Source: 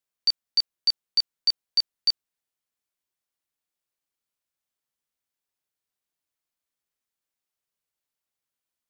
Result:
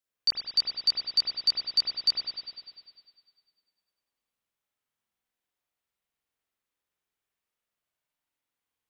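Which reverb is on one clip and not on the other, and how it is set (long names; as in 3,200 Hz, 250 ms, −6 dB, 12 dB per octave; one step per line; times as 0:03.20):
spring reverb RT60 1.9 s, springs 47 ms, chirp 55 ms, DRR −5 dB
level −3 dB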